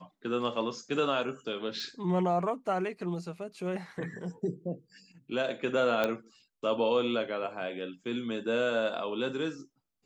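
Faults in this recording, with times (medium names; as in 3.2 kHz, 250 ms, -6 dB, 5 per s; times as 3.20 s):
1.80 s: pop -27 dBFS
6.04 s: pop -15 dBFS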